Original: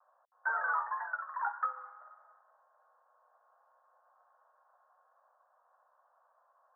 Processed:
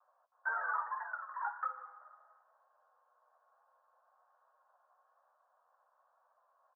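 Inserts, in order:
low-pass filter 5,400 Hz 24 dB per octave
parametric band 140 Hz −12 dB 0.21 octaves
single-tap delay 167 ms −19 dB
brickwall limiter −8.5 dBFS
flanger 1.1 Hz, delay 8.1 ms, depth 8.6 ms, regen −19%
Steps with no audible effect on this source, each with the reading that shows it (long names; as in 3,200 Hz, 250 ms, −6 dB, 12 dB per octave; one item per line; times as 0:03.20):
low-pass filter 5,400 Hz: nothing at its input above 1,900 Hz
parametric band 140 Hz: nothing at its input below 480 Hz
brickwall limiter −8.5 dBFS: peak of its input −21.5 dBFS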